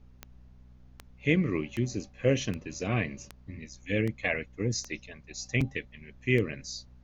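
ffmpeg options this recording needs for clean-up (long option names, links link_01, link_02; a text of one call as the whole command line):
ffmpeg -i in.wav -af "adeclick=threshold=4,bandreject=frequency=62.3:width_type=h:width=4,bandreject=frequency=124.6:width_type=h:width=4,bandreject=frequency=186.9:width_type=h:width=4,bandreject=frequency=249.2:width_type=h:width=4,agate=range=-21dB:threshold=-46dB" out.wav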